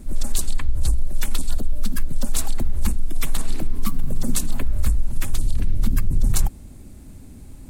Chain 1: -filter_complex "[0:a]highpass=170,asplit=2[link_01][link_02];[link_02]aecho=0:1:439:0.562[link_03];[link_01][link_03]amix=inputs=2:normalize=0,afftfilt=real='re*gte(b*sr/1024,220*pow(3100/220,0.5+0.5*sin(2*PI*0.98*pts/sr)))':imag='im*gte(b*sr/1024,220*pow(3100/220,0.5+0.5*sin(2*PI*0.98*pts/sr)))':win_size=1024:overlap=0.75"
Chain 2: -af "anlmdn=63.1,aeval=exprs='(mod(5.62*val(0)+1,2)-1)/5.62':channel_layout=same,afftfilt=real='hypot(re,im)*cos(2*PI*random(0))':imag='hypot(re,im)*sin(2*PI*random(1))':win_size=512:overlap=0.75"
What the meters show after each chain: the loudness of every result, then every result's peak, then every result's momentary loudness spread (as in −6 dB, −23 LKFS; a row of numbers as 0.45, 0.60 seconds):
−32.5, −28.0 LKFS; −9.0, −11.0 dBFS; 8, 2 LU